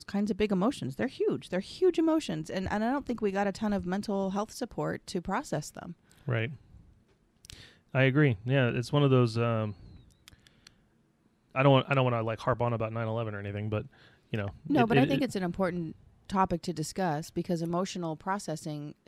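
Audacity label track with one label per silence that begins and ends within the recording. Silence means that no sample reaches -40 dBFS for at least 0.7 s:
6.540000	7.450000	silence
10.670000	11.550000	silence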